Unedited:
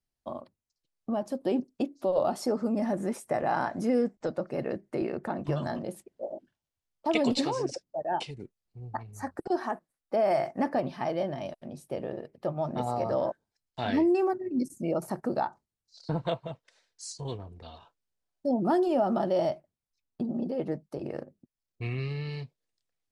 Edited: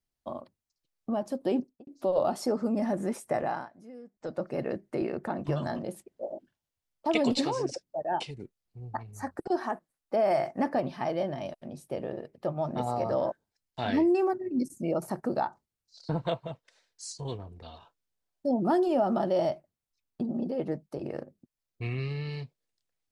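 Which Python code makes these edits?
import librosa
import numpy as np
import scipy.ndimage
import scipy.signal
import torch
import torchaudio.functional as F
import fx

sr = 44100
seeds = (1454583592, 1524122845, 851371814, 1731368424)

y = fx.studio_fade_out(x, sr, start_s=1.59, length_s=0.28)
y = fx.edit(y, sr, fx.fade_down_up(start_s=3.39, length_s=1.03, db=-21.0, fade_s=0.3), tone=tone)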